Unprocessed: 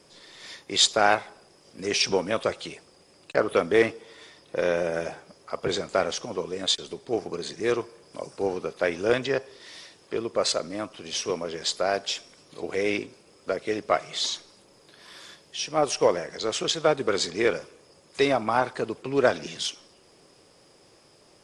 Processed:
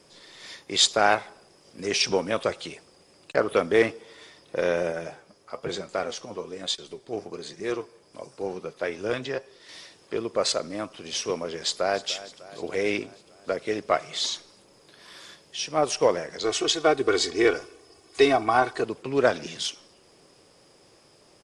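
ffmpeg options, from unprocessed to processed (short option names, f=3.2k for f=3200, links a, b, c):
-filter_complex "[0:a]asettb=1/sr,asplit=3[a][b][c];[a]atrim=end=4.924[d];[b]atrim=start=4.92:end=9.69,asetpts=PTS-STARTPTS,afade=t=in:d=0.004:c=qsin,afade=t=out:st=4.766:d=0.004:c=qsin,flanger=delay=5.2:depth=4.6:regen=64:speed=1.1:shape=sinusoidal[e];[c]atrim=start=9.686[f];[d][e]acrossfade=d=0.004:c1=hsin:c2=qsin[g];[g][f]acrossfade=d=0.004:c1=qsin:c2=hsin,asplit=2[h][i];[i]afade=t=in:st=11.63:d=0.01,afade=t=out:st=12.08:d=0.01,aecho=0:1:300|600|900|1200|1500|1800|2100:0.141254|0.0918149|0.0596797|0.0387918|0.0252147|0.0163895|0.0106532[j];[h][j]amix=inputs=2:normalize=0,asettb=1/sr,asplit=3[k][l][m];[k]atrim=end=16.444[n];[l]atrim=start=16.44:end=18.84,asetpts=PTS-STARTPTS,afade=t=in:d=0.004:c=qsin,afade=t=out:st=2.396:d=0.004:c=qsin,aecho=1:1:2.7:0.78,atrim=end_sample=105840[o];[m]atrim=start=18.836[p];[n][o]acrossfade=d=0.004:c1=hsin:c2=qsin[q];[q][p]acrossfade=d=0.004:c1=qsin:c2=hsin"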